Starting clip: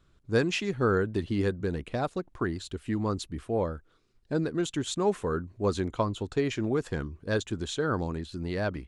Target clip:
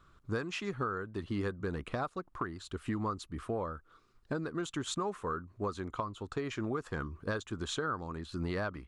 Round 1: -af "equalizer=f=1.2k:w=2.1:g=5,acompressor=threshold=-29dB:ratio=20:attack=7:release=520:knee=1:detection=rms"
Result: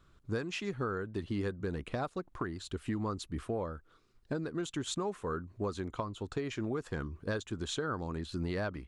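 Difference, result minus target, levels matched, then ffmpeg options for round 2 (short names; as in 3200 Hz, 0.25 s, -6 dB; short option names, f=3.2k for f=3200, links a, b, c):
1000 Hz band -3.0 dB
-af "equalizer=f=1.2k:w=2.1:g=12.5,acompressor=threshold=-29dB:ratio=20:attack=7:release=520:knee=1:detection=rms"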